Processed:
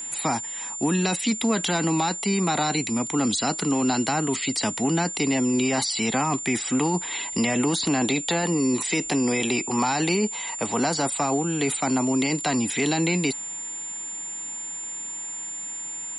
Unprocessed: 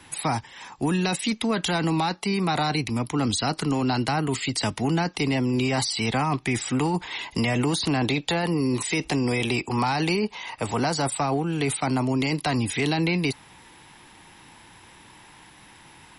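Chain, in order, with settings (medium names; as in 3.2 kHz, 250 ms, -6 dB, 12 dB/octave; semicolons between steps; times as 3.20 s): resonant low shelf 150 Hz -8 dB, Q 1.5; whistle 7.2 kHz -31 dBFS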